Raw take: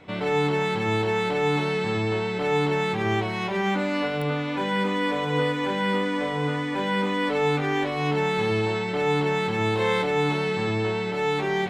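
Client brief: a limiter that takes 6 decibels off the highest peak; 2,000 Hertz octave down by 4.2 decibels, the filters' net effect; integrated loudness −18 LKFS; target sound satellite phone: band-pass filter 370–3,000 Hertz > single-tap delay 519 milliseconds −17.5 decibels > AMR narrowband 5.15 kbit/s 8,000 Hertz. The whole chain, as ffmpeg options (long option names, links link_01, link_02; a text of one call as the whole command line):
ffmpeg -i in.wav -af "equalizer=frequency=2000:width_type=o:gain=-4,alimiter=limit=-19dB:level=0:latency=1,highpass=370,lowpass=3000,aecho=1:1:519:0.133,volume=13.5dB" -ar 8000 -c:a libopencore_amrnb -b:a 5150 out.amr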